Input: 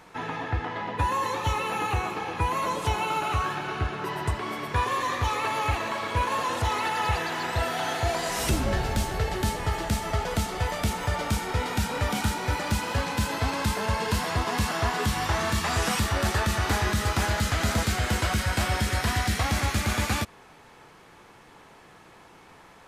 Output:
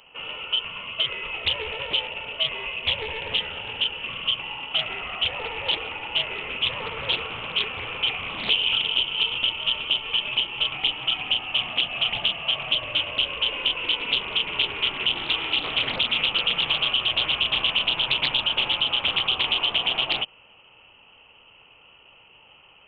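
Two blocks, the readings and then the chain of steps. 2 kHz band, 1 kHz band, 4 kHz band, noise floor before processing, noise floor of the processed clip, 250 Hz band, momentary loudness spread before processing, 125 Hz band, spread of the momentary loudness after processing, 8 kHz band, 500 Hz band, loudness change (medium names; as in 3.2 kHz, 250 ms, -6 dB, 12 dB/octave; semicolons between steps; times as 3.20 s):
+3.0 dB, -7.5 dB, +14.0 dB, -52 dBFS, -53 dBFS, -11.5 dB, 4 LU, -16.5 dB, 6 LU, under -30 dB, -5.5 dB, +4.0 dB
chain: high-order bell 1.1 kHz -15.5 dB 1.3 oct; frequency inversion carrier 3.1 kHz; loudspeaker Doppler distortion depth 0.44 ms; trim +2 dB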